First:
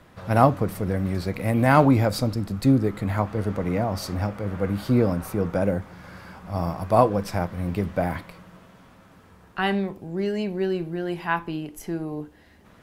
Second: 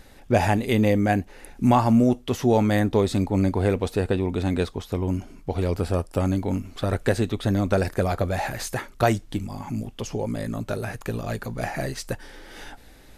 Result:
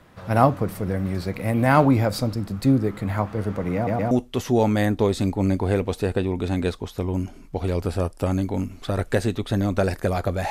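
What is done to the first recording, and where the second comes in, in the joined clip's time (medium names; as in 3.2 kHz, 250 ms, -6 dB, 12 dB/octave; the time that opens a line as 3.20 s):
first
3.75 s: stutter in place 0.12 s, 3 plays
4.11 s: go over to second from 2.05 s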